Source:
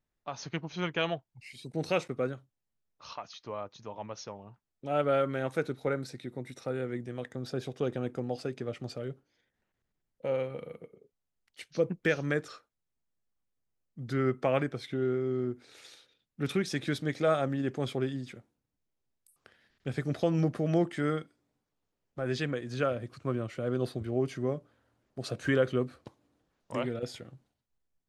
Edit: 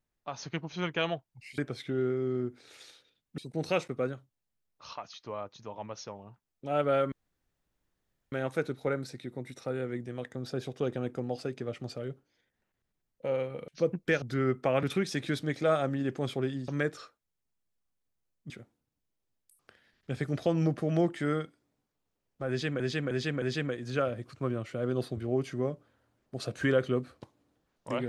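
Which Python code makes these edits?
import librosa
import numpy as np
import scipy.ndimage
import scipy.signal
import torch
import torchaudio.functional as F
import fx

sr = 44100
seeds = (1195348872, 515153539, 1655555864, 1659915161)

y = fx.edit(x, sr, fx.insert_room_tone(at_s=5.32, length_s=1.2),
    fx.cut(start_s=10.68, length_s=0.97),
    fx.move(start_s=12.19, length_s=1.82, to_s=18.27),
    fx.move(start_s=14.62, length_s=1.8, to_s=1.58),
    fx.repeat(start_s=22.26, length_s=0.31, count=4), tone=tone)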